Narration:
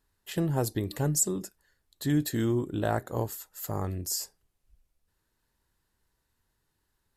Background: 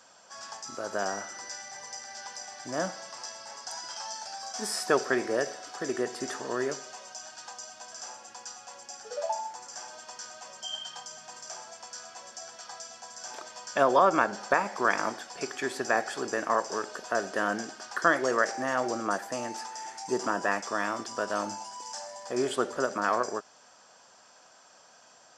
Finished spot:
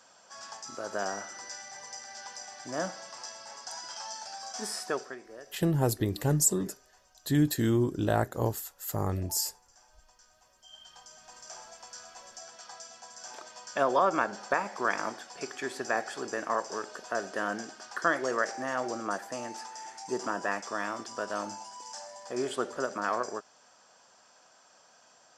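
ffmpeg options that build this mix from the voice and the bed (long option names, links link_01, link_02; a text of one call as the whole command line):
ffmpeg -i stem1.wav -i stem2.wav -filter_complex "[0:a]adelay=5250,volume=1.5dB[link_01];[1:a]volume=13.5dB,afade=type=out:start_time=4.61:duration=0.57:silence=0.141254,afade=type=in:start_time=10.63:duration=0.97:silence=0.16788[link_02];[link_01][link_02]amix=inputs=2:normalize=0" out.wav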